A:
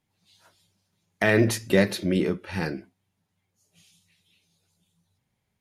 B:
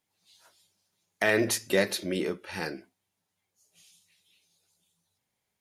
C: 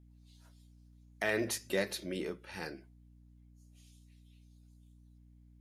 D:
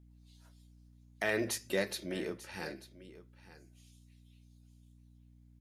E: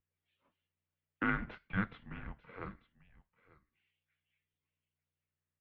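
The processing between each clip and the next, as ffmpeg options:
-af "bass=f=250:g=-11,treble=f=4k:g=5,volume=-2.5dB"
-af "aeval=exprs='val(0)+0.00316*(sin(2*PI*60*n/s)+sin(2*PI*2*60*n/s)/2+sin(2*PI*3*60*n/s)/3+sin(2*PI*4*60*n/s)/4+sin(2*PI*5*60*n/s)/5)':c=same,volume=-8dB"
-af "aecho=1:1:892:0.15"
-filter_complex "[0:a]asplit=2[a][b];[b]adynamicsmooth=sensitivity=8:basefreq=510,volume=3dB[c];[a][c]amix=inputs=2:normalize=0,highpass=f=520:t=q:w=0.5412,highpass=f=520:t=q:w=1.307,lowpass=f=3.1k:t=q:w=0.5176,lowpass=f=3.1k:t=q:w=0.7071,lowpass=f=3.1k:t=q:w=1.932,afreqshift=-390,volume=-5.5dB"

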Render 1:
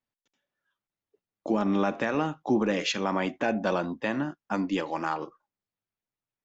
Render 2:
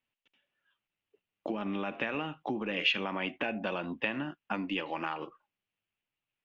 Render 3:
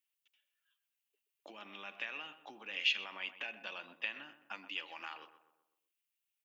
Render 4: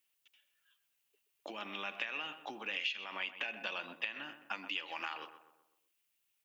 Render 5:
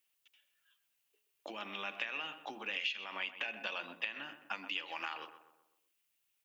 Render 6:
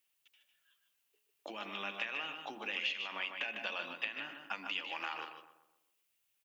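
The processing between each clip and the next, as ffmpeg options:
-af "acompressor=threshold=-32dB:ratio=6,lowpass=f=2.8k:t=q:w=4.2"
-filter_complex "[0:a]aderivative,asplit=2[a][b];[b]adelay=126,lowpass=f=1.6k:p=1,volume=-12dB,asplit=2[c][d];[d]adelay=126,lowpass=f=1.6k:p=1,volume=0.5,asplit=2[e][f];[f]adelay=126,lowpass=f=1.6k:p=1,volume=0.5,asplit=2[g][h];[h]adelay=126,lowpass=f=1.6k:p=1,volume=0.5,asplit=2[i][j];[j]adelay=126,lowpass=f=1.6k:p=1,volume=0.5[k];[a][c][e][g][i][k]amix=inputs=6:normalize=0,volume=4.5dB"
-af "acompressor=threshold=-42dB:ratio=6,volume=7.5dB"
-af "bandreject=f=60:t=h:w=6,bandreject=f=120:t=h:w=6,bandreject=f=180:t=h:w=6,bandreject=f=240:t=h:w=6,bandreject=f=300:t=h:w=6,bandreject=f=360:t=h:w=6,bandreject=f=420:t=h:w=6"
-af "aecho=1:1:151:0.447"

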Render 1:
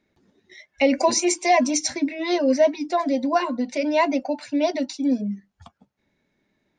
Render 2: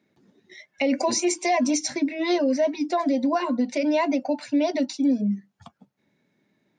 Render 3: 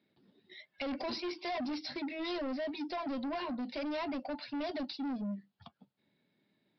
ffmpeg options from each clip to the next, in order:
-af "highpass=f=120:w=0.5412,highpass=f=120:w=1.3066,lowshelf=f=240:g=6,alimiter=limit=-14.5dB:level=0:latency=1:release=127"
-af "aexciter=amount=2.2:drive=3.8:freq=2.9k,aresample=11025,asoftclip=type=tanh:threshold=-26.5dB,aresample=44100,volume=-7.5dB"

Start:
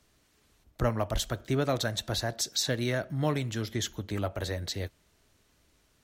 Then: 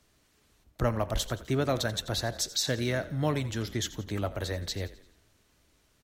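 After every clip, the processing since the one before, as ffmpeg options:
-filter_complex "[0:a]asplit=6[a][b][c][d][e][f];[b]adelay=86,afreqshift=-40,volume=-16.5dB[g];[c]adelay=172,afreqshift=-80,volume=-22.3dB[h];[d]adelay=258,afreqshift=-120,volume=-28.2dB[i];[e]adelay=344,afreqshift=-160,volume=-34dB[j];[f]adelay=430,afreqshift=-200,volume=-39.9dB[k];[a][g][h][i][j][k]amix=inputs=6:normalize=0"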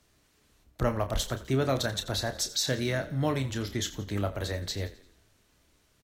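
-filter_complex "[0:a]asplit=2[a][b];[b]adelay=30,volume=-9dB[c];[a][c]amix=inputs=2:normalize=0"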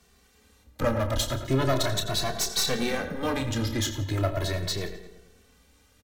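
-filter_complex "[0:a]aeval=exprs='clip(val(0),-1,0.02)':c=same,asplit=2[a][b];[b]adelay=108,lowpass=f=2.2k:p=1,volume=-10dB,asplit=2[c][d];[d]adelay=108,lowpass=f=2.2k:p=1,volume=0.54,asplit=2[e][f];[f]adelay=108,lowpass=f=2.2k:p=1,volume=0.54,asplit=2[g][h];[h]adelay=108,lowpass=f=2.2k:p=1,volume=0.54,asplit=2[i][j];[j]adelay=108,lowpass=f=2.2k:p=1,volume=0.54,asplit=2[k][l];[l]adelay=108,lowpass=f=2.2k:p=1,volume=0.54[m];[c][e][g][i][k][m]amix=inputs=6:normalize=0[n];[a][n]amix=inputs=2:normalize=0,asplit=2[o][p];[p]adelay=2.2,afreqshift=0.38[q];[o][q]amix=inputs=2:normalize=1,volume=8.5dB"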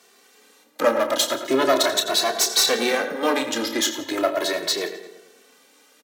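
-af "highpass=f=290:w=0.5412,highpass=f=290:w=1.3066,volume=8dB"

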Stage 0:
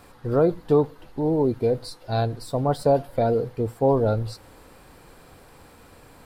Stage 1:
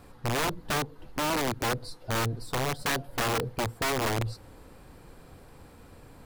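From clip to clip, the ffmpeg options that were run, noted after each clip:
-af "lowshelf=f=370:g=7.5,acompressor=threshold=-20dB:ratio=2.5,aeval=exprs='(mod(7.08*val(0)+1,2)-1)/7.08':c=same,volume=-5.5dB"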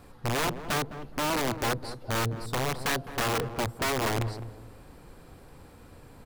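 -filter_complex "[0:a]asplit=2[a][b];[b]adelay=209,lowpass=f=830:p=1,volume=-9.5dB,asplit=2[c][d];[d]adelay=209,lowpass=f=830:p=1,volume=0.33,asplit=2[e][f];[f]adelay=209,lowpass=f=830:p=1,volume=0.33,asplit=2[g][h];[h]adelay=209,lowpass=f=830:p=1,volume=0.33[i];[a][c][e][g][i]amix=inputs=5:normalize=0"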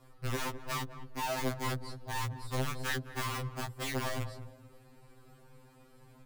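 -af "afftfilt=real='re*2.45*eq(mod(b,6),0)':imag='im*2.45*eq(mod(b,6),0)':win_size=2048:overlap=0.75,volume=-5dB"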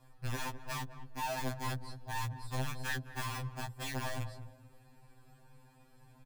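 -af "aecho=1:1:1.2:0.46,volume=-4dB"

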